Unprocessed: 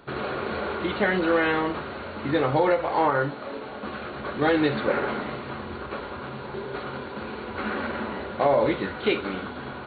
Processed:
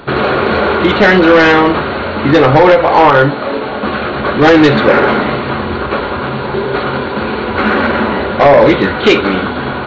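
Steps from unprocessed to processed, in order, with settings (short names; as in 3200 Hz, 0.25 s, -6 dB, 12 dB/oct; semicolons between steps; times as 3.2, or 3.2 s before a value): sine folder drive 6 dB, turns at -9.5 dBFS; downsampling 16000 Hz; gain +8 dB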